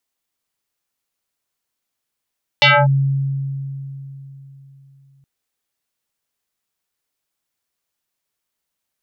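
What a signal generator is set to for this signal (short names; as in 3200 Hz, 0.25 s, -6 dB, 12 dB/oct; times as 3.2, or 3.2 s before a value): FM tone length 2.62 s, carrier 137 Hz, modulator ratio 5.26, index 5.4, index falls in 0.25 s linear, decay 3.62 s, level -7 dB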